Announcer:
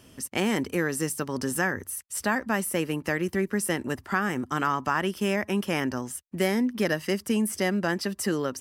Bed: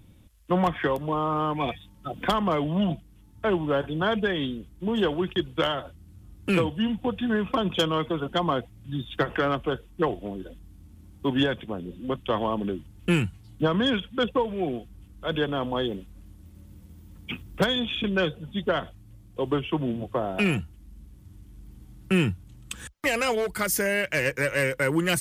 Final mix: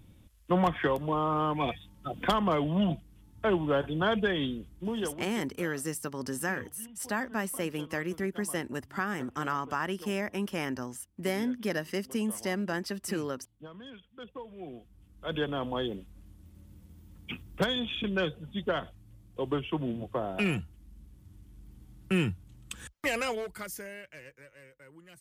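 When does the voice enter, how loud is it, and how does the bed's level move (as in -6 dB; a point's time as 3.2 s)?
4.85 s, -6.0 dB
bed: 4.75 s -2.5 dB
5.6 s -23.5 dB
14.01 s -23.5 dB
15.38 s -5 dB
23.18 s -5 dB
24.55 s -30 dB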